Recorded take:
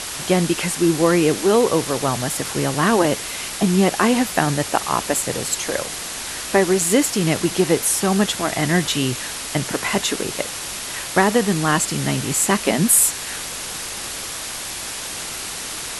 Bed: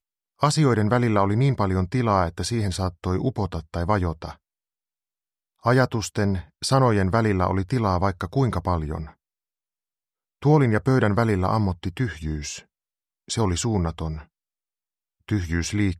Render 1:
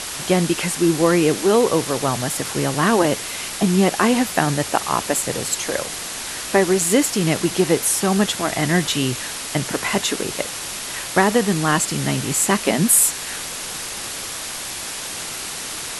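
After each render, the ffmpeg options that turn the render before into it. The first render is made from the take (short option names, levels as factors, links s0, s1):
-af "bandreject=f=50:t=h:w=4,bandreject=f=100:t=h:w=4"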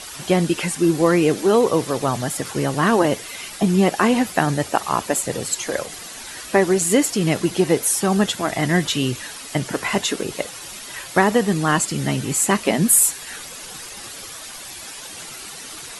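-af "afftdn=nr=10:nf=-30"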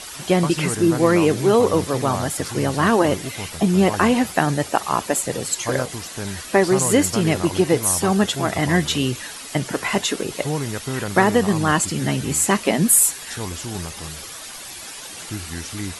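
-filter_complex "[1:a]volume=0.422[s0];[0:a][s0]amix=inputs=2:normalize=0"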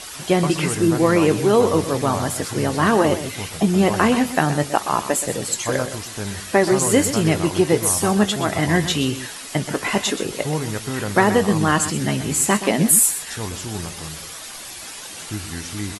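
-filter_complex "[0:a]asplit=2[s0][s1];[s1]adelay=19,volume=0.224[s2];[s0][s2]amix=inputs=2:normalize=0,aecho=1:1:125:0.251"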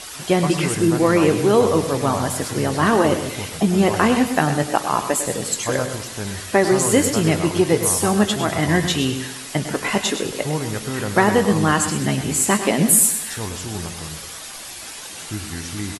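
-af "aecho=1:1:102|204|306|408|510:0.251|0.118|0.0555|0.0261|0.0123"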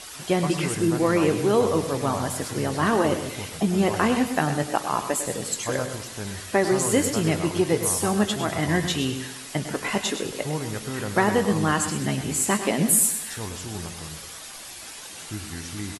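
-af "volume=0.562"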